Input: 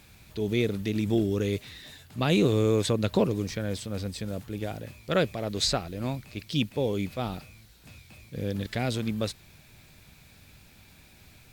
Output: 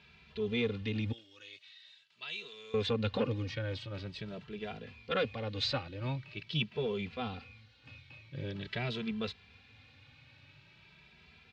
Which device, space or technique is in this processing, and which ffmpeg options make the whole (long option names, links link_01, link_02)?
barber-pole flanger into a guitar amplifier: -filter_complex "[0:a]asettb=1/sr,asplit=3[link_01][link_02][link_03];[link_01]atrim=end=1.124[link_04];[link_02]atrim=start=1.12:end=2.74,asetpts=PTS-STARTPTS,afade=type=in:duration=0.004:curve=qsin,afade=type=out:start_time=1.616:duration=0.004:curve=qsin,aderivative[link_05];[link_03]atrim=start=2.736[link_06];[link_04][link_05]acrossfade=duration=0.004:curve1=hsin:curve2=qsin[link_07];[link_07][link_06]acrossfade=duration=0.004:curve1=qsin:curve2=hsin,asplit=2[link_08][link_09];[link_09]adelay=2.6,afreqshift=0.45[link_10];[link_08][link_10]amix=inputs=2:normalize=1,asoftclip=type=tanh:threshold=-19dB,highpass=92,equalizer=frequency=190:width_type=q:width=4:gain=-7,equalizer=frequency=330:width_type=q:width=4:gain=-8,equalizer=frequency=660:width_type=q:width=4:gain=-7,equalizer=frequency=2800:width_type=q:width=4:gain=5,lowpass=frequency=4200:width=0.5412,lowpass=frequency=4200:width=1.3066"